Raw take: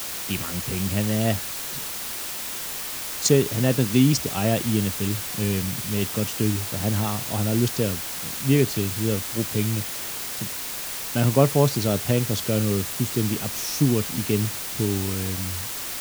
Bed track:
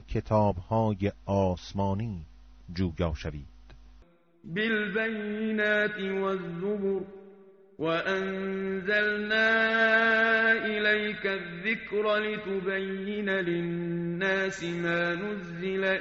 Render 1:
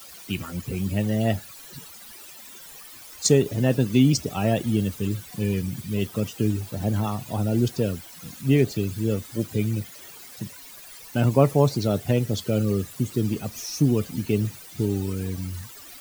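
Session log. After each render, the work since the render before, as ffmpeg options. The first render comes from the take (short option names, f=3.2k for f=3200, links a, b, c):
-af "afftdn=nr=16:nf=-32"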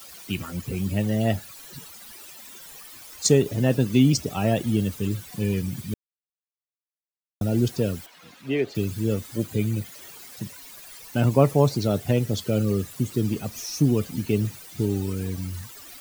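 -filter_complex "[0:a]asettb=1/sr,asplit=3[a][b][c];[a]atrim=end=8.064[d];[b]atrim=start=8.06:end=8.75,asetpts=PTS-STARTPTS,afade=t=in:d=0.004:c=qsin,afade=t=out:st=0.686:d=0.004:c=qsin,acrossover=split=320 4200:gain=0.158 1 0.158[e][f][g];[e][f][g]amix=inputs=3:normalize=0[h];[c]atrim=start=8.746[i];[d][h]acrossfade=d=0.004:c1=hsin:c2=qsin[j];[j][i]acrossfade=d=0.004:c1=qsin:c2=hsin,asettb=1/sr,asplit=3[k][l][m];[k]atrim=end=9.384[n];[l]atrim=start=9.38:end=9.86,asetpts=PTS-STARTPTS,afade=t=in:d=0.004:c=qsin,afade=t=out:st=0.476:d=0.004:c=qsin,bandreject=f=5.4k:w=9.9[o];[m]atrim=start=9.856[p];[n][o]acrossfade=d=0.004:c1=hsin:c2=qsin[q];[q][p]acrossfade=d=0.004:c1=qsin:c2=hsin,asplit=3[r][s][t];[r]atrim=end=5.94,asetpts=PTS-STARTPTS,afade=t=out:st=5.936:d=0.004:c=hsin[u];[s]atrim=start=5.94:end=7.41,asetpts=PTS-STARTPTS,volume=0[v];[t]atrim=start=7.41,asetpts=PTS-STARTPTS,afade=t=in:d=0.004:c=hsin[w];[u][v][w]concat=n=3:v=0:a=1"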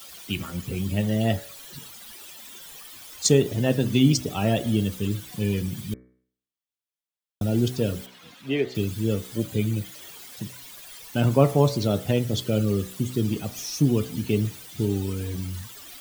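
-af "equalizer=f=3.3k:t=o:w=0.35:g=5.5,bandreject=f=62.89:t=h:w=4,bandreject=f=125.78:t=h:w=4,bandreject=f=188.67:t=h:w=4,bandreject=f=251.56:t=h:w=4,bandreject=f=314.45:t=h:w=4,bandreject=f=377.34:t=h:w=4,bandreject=f=440.23:t=h:w=4,bandreject=f=503.12:t=h:w=4,bandreject=f=566.01:t=h:w=4,bandreject=f=628.9:t=h:w=4,bandreject=f=691.79:t=h:w=4,bandreject=f=754.68:t=h:w=4,bandreject=f=817.57:t=h:w=4,bandreject=f=880.46:t=h:w=4,bandreject=f=943.35:t=h:w=4,bandreject=f=1.00624k:t=h:w=4,bandreject=f=1.06913k:t=h:w=4,bandreject=f=1.13202k:t=h:w=4,bandreject=f=1.19491k:t=h:w=4,bandreject=f=1.2578k:t=h:w=4,bandreject=f=1.32069k:t=h:w=4,bandreject=f=1.38358k:t=h:w=4,bandreject=f=1.44647k:t=h:w=4,bandreject=f=1.50936k:t=h:w=4,bandreject=f=1.57225k:t=h:w=4,bandreject=f=1.63514k:t=h:w=4,bandreject=f=1.69803k:t=h:w=4,bandreject=f=1.76092k:t=h:w=4,bandreject=f=1.82381k:t=h:w=4,bandreject=f=1.8867k:t=h:w=4,bandreject=f=1.94959k:t=h:w=4,bandreject=f=2.01248k:t=h:w=4,bandreject=f=2.07537k:t=h:w=4,bandreject=f=2.13826k:t=h:w=4,bandreject=f=2.20115k:t=h:w=4,bandreject=f=2.26404k:t=h:w=4"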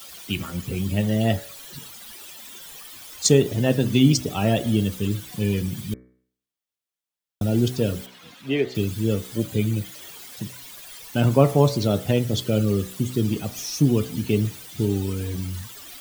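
-af "volume=2dB,alimiter=limit=-3dB:level=0:latency=1"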